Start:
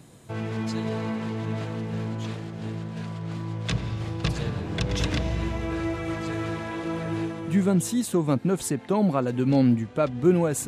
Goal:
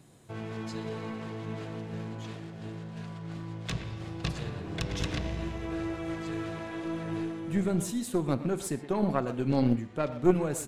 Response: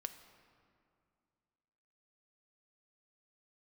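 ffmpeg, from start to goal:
-filter_complex "[0:a]asplit=2[s0][s1];[s1]adelay=120,highpass=300,lowpass=3400,asoftclip=type=hard:threshold=0.126,volume=0.282[s2];[s0][s2]amix=inputs=2:normalize=0[s3];[1:a]atrim=start_sample=2205,atrim=end_sample=6174[s4];[s3][s4]afir=irnorm=-1:irlink=0,aeval=exprs='0.266*(cos(1*acos(clip(val(0)/0.266,-1,1)))-cos(1*PI/2))+0.0531*(cos(2*acos(clip(val(0)/0.266,-1,1)))-cos(2*PI/2))+0.0299*(cos(3*acos(clip(val(0)/0.266,-1,1)))-cos(3*PI/2))':c=same"

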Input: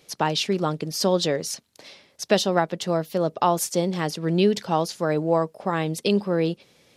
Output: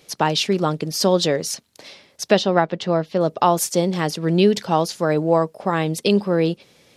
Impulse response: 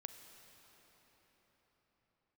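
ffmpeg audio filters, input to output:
-filter_complex "[0:a]asettb=1/sr,asplit=3[s0][s1][s2];[s0]atrim=end=2.324[s3];[s1]atrim=start=2.32:end=3.21,asetpts=PTS-STARTPTS,afade=t=in:d=0.004:c=qsin,afade=t=out:st=0.886:d=0.004:c=qsin,lowpass=4100[s4];[s2]atrim=start=3.206[s5];[s3][s4]acrossfade=d=0.004:c1=hsin:c2=qsin[s6];[s6][s5]acrossfade=d=0.004:c1=qsin:c2=hsin,volume=1.58"

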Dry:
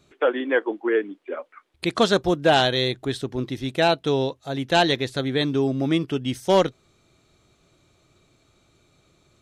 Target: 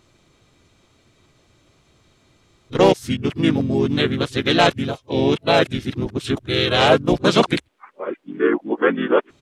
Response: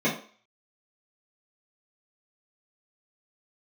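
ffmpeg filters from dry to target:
-filter_complex "[0:a]areverse,asplit=3[s0][s1][s2];[s1]asetrate=29433,aresample=44100,atempo=1.49831,volume=0.447[s3];[s2]asetrate=37084,aresample=44100,atempo=1.18921,volume=0.708[s4];[s0][s3][s4]amix=inputs=3:normalize=0,volume=1.19"

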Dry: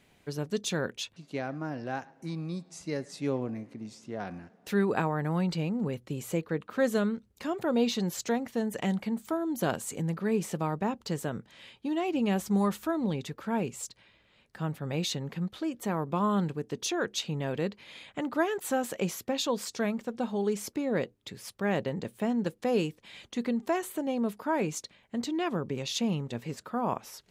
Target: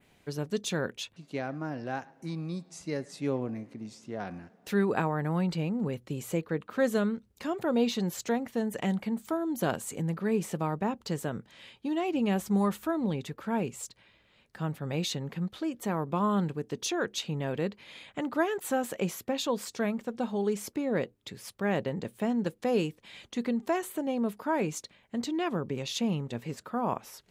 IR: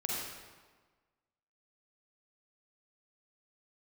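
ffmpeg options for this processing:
-af "adynamicequalizer=threshold=0.002:dfrequency=5300:dqfactor=1.1:tfrequency=5300:tqfactor=1.1:attack=5:release=100:ratio=0.375:range=2:mode=cutabove:tftype=bell"

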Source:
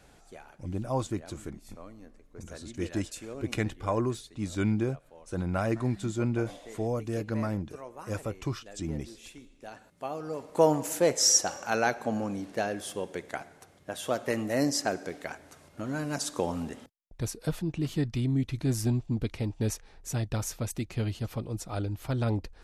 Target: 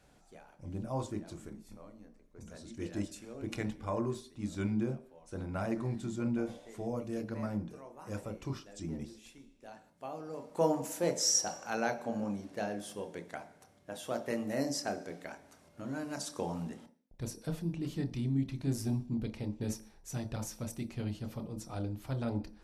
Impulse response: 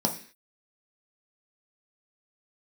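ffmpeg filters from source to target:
-filter_complex "[0:a]asplit=2[s0][s1];[1:a]atrim=start_sample=2205,adelay=26[s2];[s1][s2]afir=irnorm=-1:irlink=0,volume=0.15[s3];[s0][s3]amix=inputs=2:normalize=0,volume=0.398"

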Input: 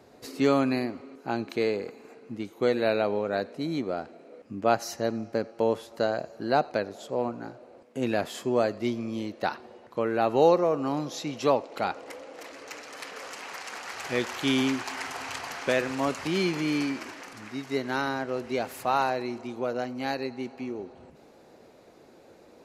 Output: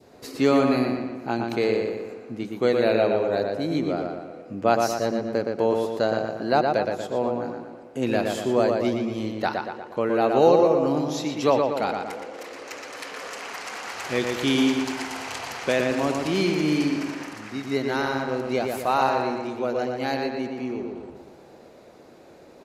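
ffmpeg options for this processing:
-filter_complex "[0:a]adynamicequalizer=threshold=0.01:dfrequency=1400:dqfactor=0.93:tfrequency=1400:tqfactor=0.93:attack=5:release=100:ratio=0.375:range=3:mode=cutabove:tftype=bell,asplit=2[s0][s1];[s1]adelay=118,lowpass=f=3800:p=1,volume=0.668,asplit=2[s2][s3];[s3]adelay=118,lowpass=f=3800:p=1,volume=0.54,asplit=2[s4][s5];[s5]adelay=118,lowpass=f=3800:p=1,volume=0.54,asplit=2[s6][s7];[s7]adelay=118,lowpass=f=3800:p=1,volume=0.54,asplit=2[s8][s9];[s9]adelay=118,lowpass=f=3800:p=1,volume=0.54,asplit=2[s10][s11];[s11]adelay=118,lowpass=f=3800:p=1,volume=0.54,asplit=2[s12][s13];[s13]adelay=118,lowpass=f=3800:p=1,volume=0.54[s14];[s2][s4][s6][s8][s10][s12][s14]amix=inputs=7:normalize=0[s15];[s0][s15]amix=inputs=2:normalize=0,volume=1.41"

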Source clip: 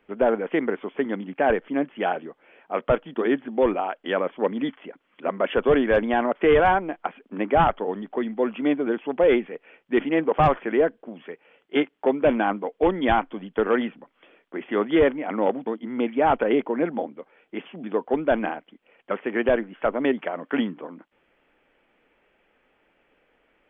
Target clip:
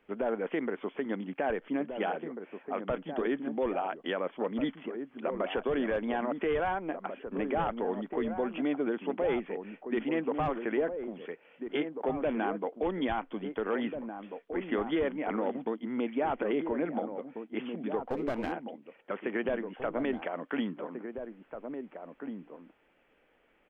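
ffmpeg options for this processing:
-filter_complex "[0:a]acompressor=threshold=0.0891:ratio=2.5,alimiter=limit=0.126:level=0:latency=1:release=130,asplit=3[s0][s1][s2];[s0]afade=t=out:st=18.07:d=0.02[s3];[s1]aeval=exprs='clip(val(0),-1,0.0237)':c=same,afade=t=in:st=18.07:d=0.02,afade=t=out:st=18.51:d=0.02[s4];[s2]afade=t=in:st=18.51:d=0.02[s5];[s3][s4][s5]amix=inputs=3:normalize=0,asplit=2[s6][s7];[s7]adelay=1691,volume=0.447,highshelf=f=4000:g=-38[s8];[s6][s8]amix=inputs=2:normalize=0,volume=0.668"

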